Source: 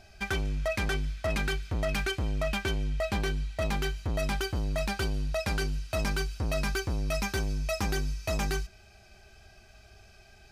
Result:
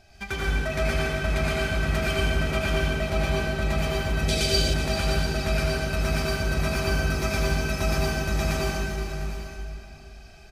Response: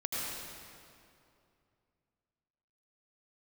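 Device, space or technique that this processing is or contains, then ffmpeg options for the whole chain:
stairwell: -filter_complex "[1:a]atrim=start_sample=2205[s0];[0:a][s0]afir=irnorm=-1:irlink=0,asettb=1/sr,asplit=3[s1][s2][s3];[s1]atrim=end=4.284[s4];[s2]atrim=start=4.28:end=4.74,asetpts=PTS-STARTPTS,afade=t=in:d=0.004:c=qsin,afade=t=out:st=0.456:d=0.004:c=qsin,equalizer=f=500:t=o:w=1:g=7,equalizer=f=1000:t=o:w=1:g=-11,equalizer=f=4000:t=o:w=1:g=11,equalizer=f=8000:t=o:w=1:g=9[s5];[s3]atrim=start=4.736[s6];[s4][s5]acrossfade=d=0.004:c1=hsin:c2=qsin[s7];[s7][s6]acrossfade=d=0.004:c1=qsin:c2=hsin,aecho=1:1:390|703|795:0.282|0.188|0.158"

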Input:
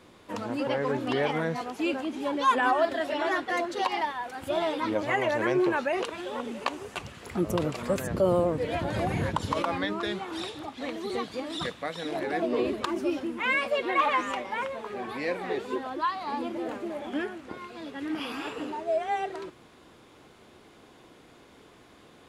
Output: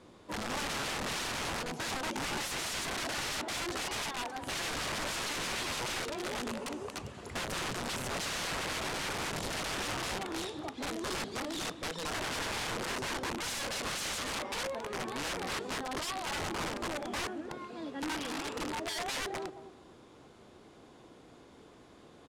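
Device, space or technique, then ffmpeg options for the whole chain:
overflowing digital effects unit: -filter_complex "[0:a]equalizer=f=2300:w=0.77:g=-5.5,asplit=2[s0][s1];[s1]adelay=220,lowpass=f=1300:p=1,volume=0.266,asplit=2[s2][s3];[s3]adelay=220,lowpass=f=1300:p=1,volume=0.26,asplit=2[s4][s5];[s5]adelay=220,lowpass=f=1300:p=1,volume=0.26[s6];[s0][s2][s4][s6]amix=inputs=4:normalize=0,aeval=exprs='(mod(29.9*val(0)+1,2)-1)/29.9':c=same,lowpass=9400,volume=0.891"

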